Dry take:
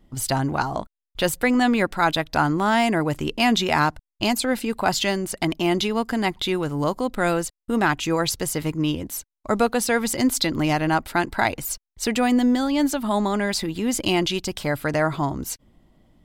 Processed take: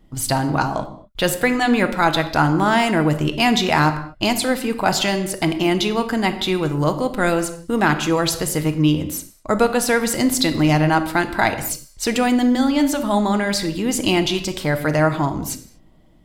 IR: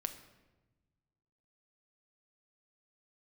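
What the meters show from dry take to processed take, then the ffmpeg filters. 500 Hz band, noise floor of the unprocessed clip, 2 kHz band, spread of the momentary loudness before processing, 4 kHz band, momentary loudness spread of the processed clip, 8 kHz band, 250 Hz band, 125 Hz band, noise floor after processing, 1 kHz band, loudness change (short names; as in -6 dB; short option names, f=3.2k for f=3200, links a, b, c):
+3.5 dB, under -85 dBFS, +3.5 dB, 7 LU, +3.5 dB, 6 LU, +3.0 dB, +3.5 dB, +6.0 dB, -49 dBFS, +3.0 dB, +3.5 dB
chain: -filter_complex "[1:a]atrim=start_sample=2205,afade=t=out:st=0.3:d=0.01,atrim=end_sample=13671[a];[0:a][a]afir=irnorm=-1:irlink=0,volume=4dB"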